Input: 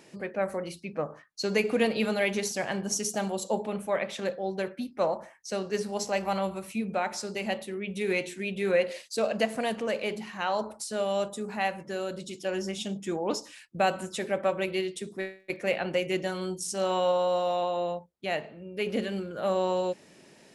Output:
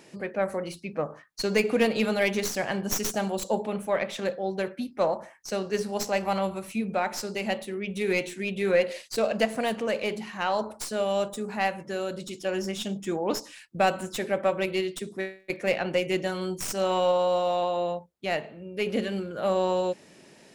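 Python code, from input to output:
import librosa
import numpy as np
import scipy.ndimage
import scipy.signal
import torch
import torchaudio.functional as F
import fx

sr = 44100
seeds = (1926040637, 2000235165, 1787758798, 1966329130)

y = fx.tracing_dist(x, sr, depth_ms=0.078)
y = y * librosa.db_to_amplitude(2.0)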